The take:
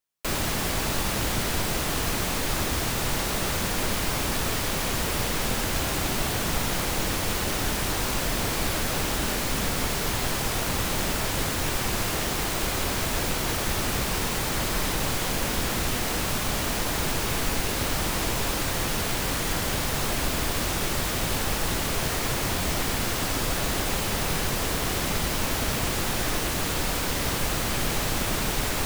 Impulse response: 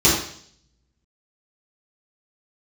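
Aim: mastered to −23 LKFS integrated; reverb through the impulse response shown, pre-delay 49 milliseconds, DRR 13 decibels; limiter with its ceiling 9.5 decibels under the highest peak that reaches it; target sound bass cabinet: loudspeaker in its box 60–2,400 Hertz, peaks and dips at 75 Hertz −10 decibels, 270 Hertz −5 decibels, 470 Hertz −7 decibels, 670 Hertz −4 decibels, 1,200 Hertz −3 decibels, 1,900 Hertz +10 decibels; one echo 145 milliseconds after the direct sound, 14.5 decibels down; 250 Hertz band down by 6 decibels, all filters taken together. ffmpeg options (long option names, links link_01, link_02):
-filter_complex "[0:a]equalizer=frequency=250:width_type=o:gain=-5.5,alimiter=limit=-22dB:level=0:latency=1,aecho=1:1:145:0.188,asplit=2[link_01][link_02];[1:a]atrim=start_sample=2205,adelay=49[link_03];[link_02][link_03]afir=irnorm=-1:irlink=0,volume=-34dB[link_04];[link_01][link_04]amix=inputs=2:normalize=0,highpass=frequency=60:width=0.5412,highpass=frequency=60:width=1.3066,equalizer=frequency=75:width_type=q:width=4:gain=-10,equalizer=frequency=270:width_type=q:width=4:gain=-5,equalizer=frequency=470:width_type=q:width=4:gain=-7,equalizer=frequency=670:width_type=q:width=4:gain=-4,equalizer=frequency=1200:width_type=q:width=4:gain=-3,equalizer=frequency=1900:width_type=q:width=4:gain=10,lowpass=frequency=2400:width=0.5412,lowpass=frequency=2400:width=1.3066,volume=10dB"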